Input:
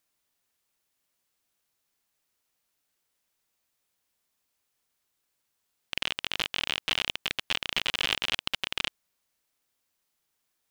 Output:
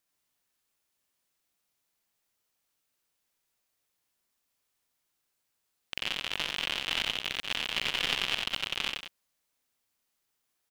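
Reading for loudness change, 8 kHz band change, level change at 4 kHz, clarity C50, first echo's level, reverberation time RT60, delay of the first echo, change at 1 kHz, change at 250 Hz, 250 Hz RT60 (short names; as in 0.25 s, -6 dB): -1.5 dB, -1.5 dB, -1.0 dB, none, -17.0 dB, none, 45 ms, -1.0 dB, -1.0 dB, none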